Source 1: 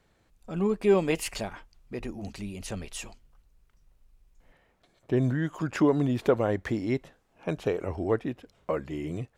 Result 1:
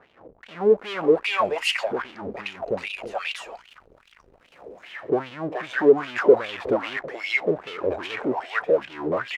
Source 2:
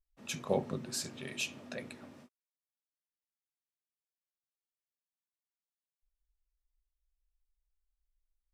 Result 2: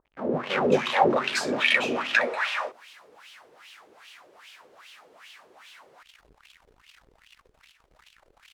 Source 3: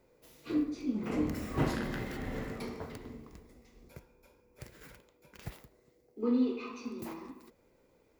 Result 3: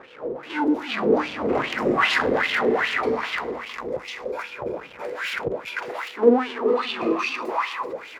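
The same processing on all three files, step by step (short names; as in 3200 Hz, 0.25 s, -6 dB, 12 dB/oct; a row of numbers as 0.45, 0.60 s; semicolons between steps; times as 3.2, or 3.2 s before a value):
bands offset in time lows, highs 0.43 s, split 670 Hz; power-law curve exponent 0.5; wah 2.5 Hz 420–3100 Hz, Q 3.8; match loudness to -24 LUFS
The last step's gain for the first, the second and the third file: +9.0, +22.0, +20.0 dB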